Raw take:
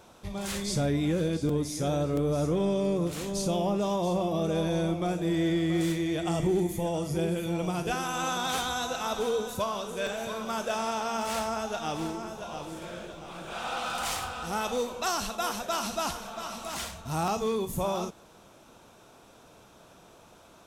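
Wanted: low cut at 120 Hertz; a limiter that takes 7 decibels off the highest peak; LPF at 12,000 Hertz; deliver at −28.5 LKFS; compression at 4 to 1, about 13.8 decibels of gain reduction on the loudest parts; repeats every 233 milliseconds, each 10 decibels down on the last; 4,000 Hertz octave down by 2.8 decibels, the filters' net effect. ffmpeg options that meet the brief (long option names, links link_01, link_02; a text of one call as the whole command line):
ffmpeg -i in.wav -af "highpass=120,lowpass=12000,equalizer=frequency=4000:width_type=o:gain=-3.5,acompressor=threshold=-41dB:ratio=4,alimiter=level_in=11dB:limit=-24dB:level=0:latency=1,volume=-11dB,aecho=1:1:233|466|699|932:0.316|0.101|0.0324|0.0104,volume=15dB" out.wav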